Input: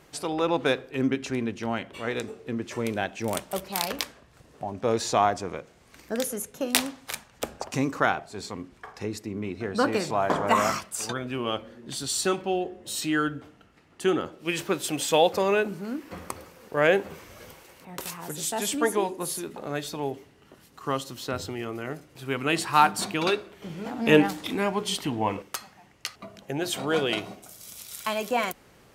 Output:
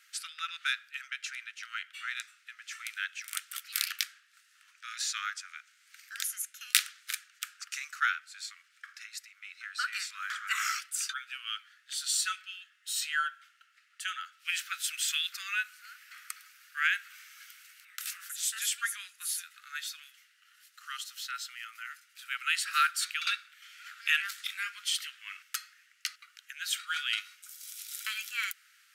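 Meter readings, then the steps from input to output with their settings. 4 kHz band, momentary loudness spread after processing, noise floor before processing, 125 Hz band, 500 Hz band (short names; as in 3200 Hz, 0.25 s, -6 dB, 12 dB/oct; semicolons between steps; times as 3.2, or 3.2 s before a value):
-1.0 dB, 18 LU, -57 dBFS, under -40 dB, under -40 dB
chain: steep high-pass 1300 Hz 96 dB/oct; gain -1 dB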